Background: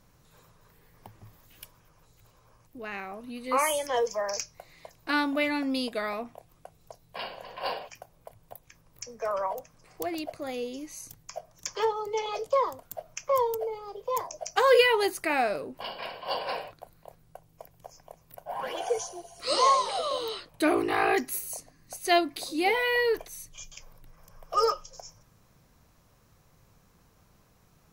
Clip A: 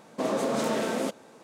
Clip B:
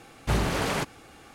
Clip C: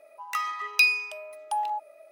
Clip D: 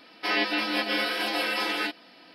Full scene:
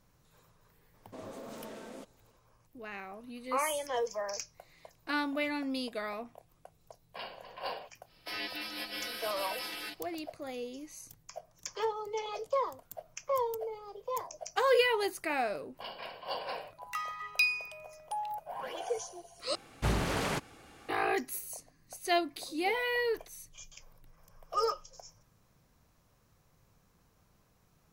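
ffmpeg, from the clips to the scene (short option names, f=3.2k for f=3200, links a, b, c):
-filter_complex "[0:a]volume=-6dB[a];[4:a]aemphasis=mode=production:type=75fm[b];[3:a]highpass=550[c];[a]asplit=2[d][e];[d]atrim=end=19.554[f];[2:a]atrim=end=1.34,asetpts=PTS-STARTPTS,volume=-5dB[g];[e]atrim=start=20.886[h];[1:a]atrim=end=1.43,asetpts=PTS-STARTPTS,volume=-18dB,afade=t=in:d=0.004:c=hsin,afade=t=out:st=1.426:d=0.004:c=hsin,adelay=940[i];[b]atrim=end=2.34,asetpts=PTS-STARTPTS,volume=-15.5dB,afade=t=in:d=0.1,afade=t=out:st=2.24:d=0.1,adelay=8030[j];[c]atrim=end=2.11,asetpts=PTS-STARTPTS,volume=-7.5dB,afade=t=in:d=0.004:c=hsin,afade=t=out:st=2.106:d=0.004:c=hsin,adelay=16600[k];[f][g]acrossfade=d=0.004:c1=hsin:c2=hsin[l];[l][h]acrossfade=d=0.004:c1=hsin:c2=hsin[m];[m][i][j][k]amix=inputs=4:normalize=0"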